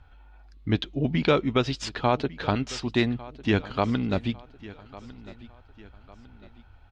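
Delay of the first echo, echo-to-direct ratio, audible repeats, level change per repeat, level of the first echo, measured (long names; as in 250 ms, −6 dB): 1,151 ms, −18.0 dB, 3, −7.5 dB, −19.0 dB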